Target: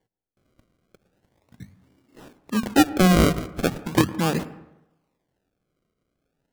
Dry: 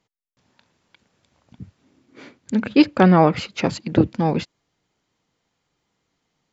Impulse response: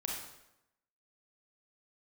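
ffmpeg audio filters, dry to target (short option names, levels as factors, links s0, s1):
-filter_complex "[0:a]bandreject=f=50:t=h:w=6,bandreject=f=100:t=h:w=6,bandreject=f=150:t=h:w=6,bandreject=f=200:t=h:w=6,bandreject=f=250:t=h:w=6,acrusher=samples=34:mix=1:aa=0.000001:lfo=1:lforange=34:lforate=0.38,asplit=2[s0][s1];[1:a]atrim=start_sample=2205,lowpass=2000,adelay=107[s2];[s1][s2]afir=irnorm=-1:irlink=0,volume=0.133[s3];[s0][s3]amix=inputs=2:normalize=0,volume=0.75"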